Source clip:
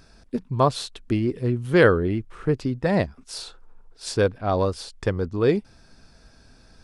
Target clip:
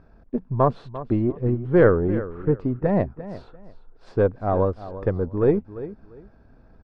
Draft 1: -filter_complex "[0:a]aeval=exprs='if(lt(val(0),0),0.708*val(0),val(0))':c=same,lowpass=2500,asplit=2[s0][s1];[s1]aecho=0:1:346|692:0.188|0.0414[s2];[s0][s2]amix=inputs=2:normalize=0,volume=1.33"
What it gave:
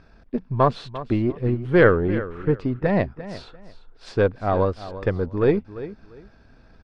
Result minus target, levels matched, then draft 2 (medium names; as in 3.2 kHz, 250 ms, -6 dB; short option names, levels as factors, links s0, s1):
2 kHz band +6.5 dB
-filter_complex "[0:a]aeval=exprs='if(lt(val(0),0),0.708*val(0),val(0))':c=same,lowpass=1100,asplit=2[s0][s1];[s1]aecho=0:1:346|692:0.188|0.0414[s2];[s0][s2]amix=inputs=2:normalize=0,volume=1.33"